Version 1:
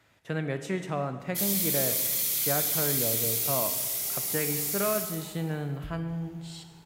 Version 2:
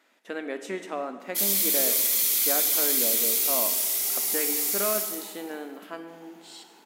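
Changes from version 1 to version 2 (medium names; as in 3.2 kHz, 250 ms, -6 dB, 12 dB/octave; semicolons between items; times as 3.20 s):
background +4.5 dB; master: add brick-wall FIR high-pass 200 Hz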